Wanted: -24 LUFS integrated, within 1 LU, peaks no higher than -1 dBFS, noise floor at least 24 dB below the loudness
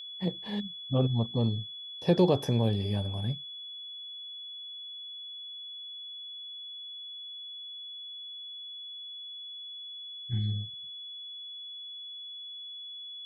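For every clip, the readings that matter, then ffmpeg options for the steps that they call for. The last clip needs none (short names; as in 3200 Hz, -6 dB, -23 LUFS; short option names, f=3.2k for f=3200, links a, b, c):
steady tone 3400 Hz; tone level -40 dBFS; loudness -34.0 LUFS; peak -12.0 dBFS; loudness target -24.0 LUFS
-> -af "bandreject=f=3.4k:w=30"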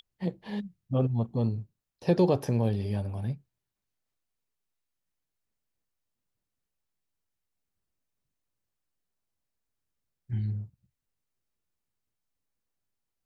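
steady tone none; loudness -30.0 LUFS; peak -12.5 dBFS; loudness target -24.0 LUFS
-> -af "volume=6dB"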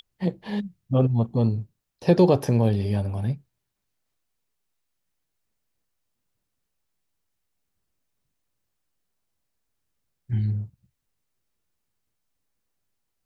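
loudness -24.0 LUFS; peak -6.5 dBFS; noise floor -79 dBFS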